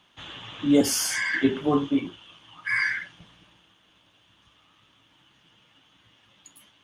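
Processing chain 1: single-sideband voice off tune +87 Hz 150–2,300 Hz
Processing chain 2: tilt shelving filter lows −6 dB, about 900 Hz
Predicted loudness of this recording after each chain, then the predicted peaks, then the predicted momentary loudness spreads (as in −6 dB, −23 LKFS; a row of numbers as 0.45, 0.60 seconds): −25.5, −23.5 LKFS; −7.5, −7.5 dBFS; 16, 17 LU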